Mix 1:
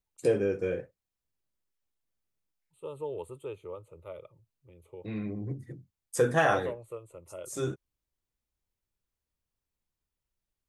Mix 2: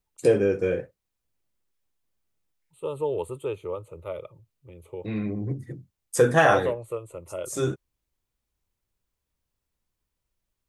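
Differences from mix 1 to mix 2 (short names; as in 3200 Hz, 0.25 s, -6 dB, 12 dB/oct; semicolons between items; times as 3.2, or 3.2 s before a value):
first voice +6.0 dB; second voice +9.0 dB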